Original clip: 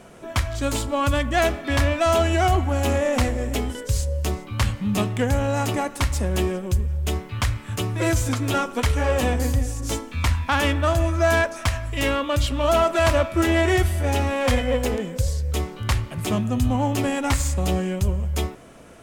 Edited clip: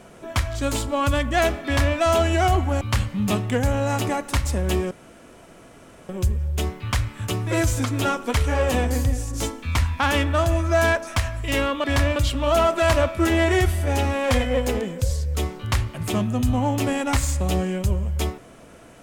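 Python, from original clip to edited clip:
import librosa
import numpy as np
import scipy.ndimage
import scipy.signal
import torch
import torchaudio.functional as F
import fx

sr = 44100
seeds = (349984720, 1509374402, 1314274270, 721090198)

y = fx.edit(x, sr, fx.duplicate(start_s=1.65, length_s=0.32, to_s=12.33),
    fx.cut(start_s=2.81, length_s=1.67),
    fx.insert_room_tone(at_s=6.58, length_s=1.18), tone=tone)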